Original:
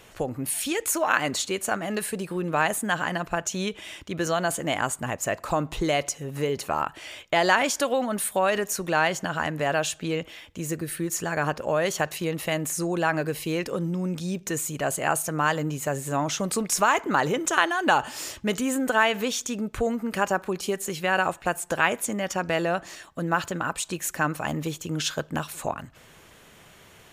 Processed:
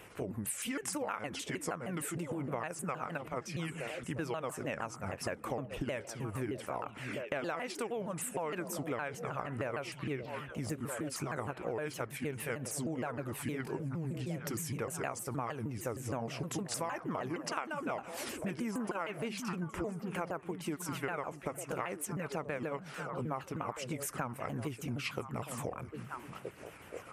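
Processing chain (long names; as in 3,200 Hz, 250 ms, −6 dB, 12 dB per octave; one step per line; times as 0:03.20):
pitch shifter swept by a sawtooth −6.5 semitones, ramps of 155 ms
in parallel at −1 dB: output level in coarse steps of 9 dB
on the sum: high-pass filter 57 Hz
flat-topped bell 4,900 Hz −8 dB 1.2 octaves
on a send: echo through a band-pass that steps 636 ms, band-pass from 170 Hz, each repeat 1.4 octaves, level −8 dB
on the sum: downward compressor 6 to 1, threshold −29 dBFS, peak gain reduction 16.5 dB
level −5.5 dB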